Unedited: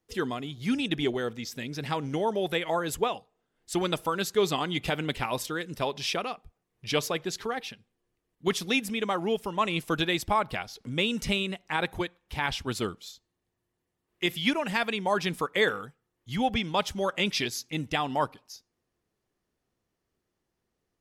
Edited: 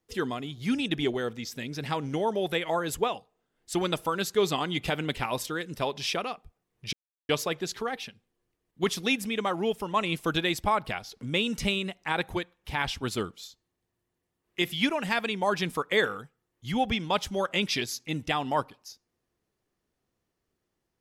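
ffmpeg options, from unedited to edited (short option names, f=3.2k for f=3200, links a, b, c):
-filter_complex "[0:a]asplit=2[a][b];[a]atrim=end=6.93,asetpts=PTS-STARTPTS,afade=t=out:st=6.926:d=0.004:c=hsin,apad=pad_dur=0.36[c];[b]atrim=start=6.93,asetpts=PTS-STARTPTS,afade=t=in:d=0.004:c=hsin[d];[c][d]concat=n=2:v=0:a=1"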